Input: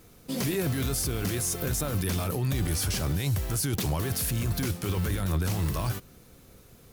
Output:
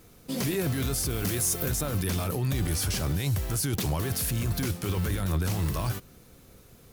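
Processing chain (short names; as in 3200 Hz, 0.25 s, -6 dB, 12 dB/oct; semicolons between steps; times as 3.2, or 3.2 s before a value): 1.1–1.71 high shelf 8400 Hz +6 dB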